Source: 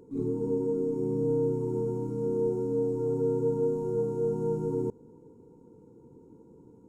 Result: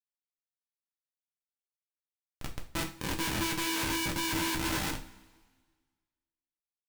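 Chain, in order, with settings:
variable-slope delta modulation 64 kbit/s
ambience of single reflections 44 ms −15 dB, 62 ms −8.5 dB
high-pass filter sweep 1,000 Hz → 280 Hz, 0:01.85–0:05.63
downward compressor 2 to 1, threshold −29 dBFS, peak gain reduction 6 dB
hollow resonant body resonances 230/500 Hz, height 10 dB, ringing for 40 ms
pitch shifter −6 semitones
comparator with hysteresis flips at −25.5 dBFS
tilt shelving filter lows −5 dB, about 1,200 Hz
coupled-rooms reverb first 0.31 s, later 1.6 s, from −21 dB, DRR 1 dB

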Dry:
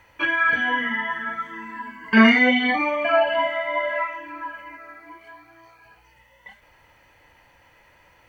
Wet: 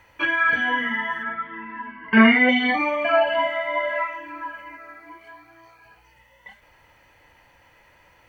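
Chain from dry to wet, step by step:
0:01.23–0:02.49: low-pass filter 3,100 Hz 24 dB per octave

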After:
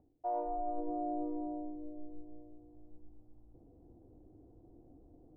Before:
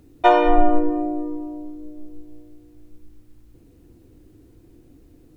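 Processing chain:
transistor ladder low-pass 830 Hz, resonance 60%
reversed playback
downward compressor 16 to 1, threshold −34 dBFS, peak gain reduction 23 dB
reversed playback
level +1 dB

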